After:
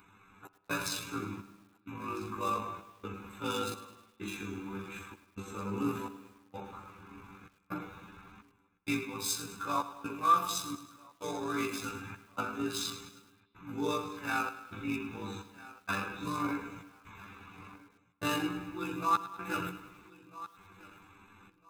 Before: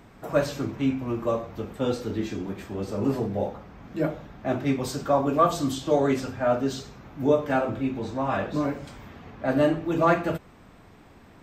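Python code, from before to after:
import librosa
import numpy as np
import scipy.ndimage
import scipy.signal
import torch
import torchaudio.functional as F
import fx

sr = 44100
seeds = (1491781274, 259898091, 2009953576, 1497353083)

p1 = fx.wiener(x, sr, points=9)
p2 = fx.low_shelf(p1, sr, hz=94.0, db=10.5)
p3 = fx.hum_notches(p2, sr, base_hz=60, count=6)
p4 = fx.step_gate(p3, sr, bpm=122, pattern='xx.xxx..xx', floor_db=-60.0, edge_ms=4.5)
p5 = p4 + fx.echo_feedback(p4, sr, ms=684, feedback_pct=23, wet_db=-22, dry=0)
p6 = fx.stretch_grains(p5, sr, factor=1.9, grain_ms=43.0)
p7 = fx.tilt_eq(p6, sr, slope=4.5)
p8 = p7 + 0.87 * np.pad(p7, (int(0.8 * sr / 1000.0), 0))[:len(p7)]
p9 = fx.rider(p8, sr, range_db=3, speed_s=0.5)
p10 = fx.rev_spring(p9, sr, rt60_s=1.6, pass_ms=(45, 56), chirp_ms=65, drr_db=17.0)
p11 = fx.echo_crushed(p10, sr, ms=105, feedback_pct=55, bits=8, wet_db=-14.0)
y = p11 * librosa.db_to_amplitude(-6.5)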